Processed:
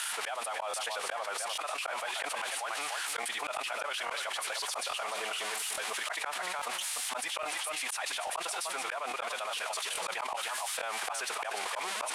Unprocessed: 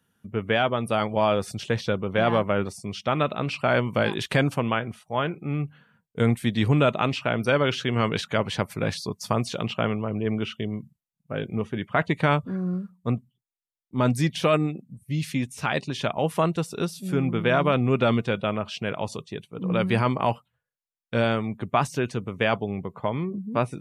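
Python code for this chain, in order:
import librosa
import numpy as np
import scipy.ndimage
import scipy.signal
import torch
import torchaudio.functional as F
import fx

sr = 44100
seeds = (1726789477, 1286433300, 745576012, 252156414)

p1 = x + 0.5 * 10.0 ** (-18.5 / 20.0) * np.diff(np.sign(x), prepend=np.sign(x[:1]))
p2 = fx.peak_eq(p1, sr, hz=5900.0, db=-5.0, octaves=1.2)
p3 = p2 + fx.echo_single(p2, sr, ms=583, db=-11.5, dry=0)
p4 = fx.stretch_vocoder(p3, sr, factor=0.51)
p5 = scipy.signal.sosfilt(scipy.signal.ellip(3, 1.0, 80, [750.0, 9700.0], 'bandpass', fs=sr, output='sos'), p4)
p6 = fx.auto_swell(p5, sr, attack_ms=618.0)
p7 = fx.high_shelf(p6, sr, hz=4600.0, db=-9.0)
p8 = fx.buffer_crackle(p7, sr, first_s=0.69, period_s=0.84, block=1024, kind='repeat')
p9 = fx.env_flatten(p8, sr, amount_pct=100)
y = F.gain(torch.from_numpy(p9), -1.0).numpy()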